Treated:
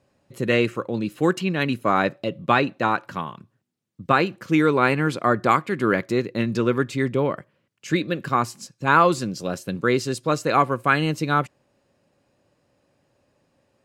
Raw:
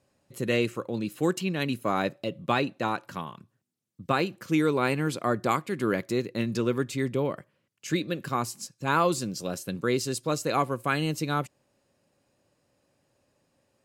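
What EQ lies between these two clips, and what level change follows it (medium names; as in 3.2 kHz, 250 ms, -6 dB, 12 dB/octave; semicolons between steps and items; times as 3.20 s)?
dynamic bell 1.5 kHz, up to +5 dB, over -39 dBFS, Q 1; treble shelf 6.2 kHz -10.5 dB; +5.0 dB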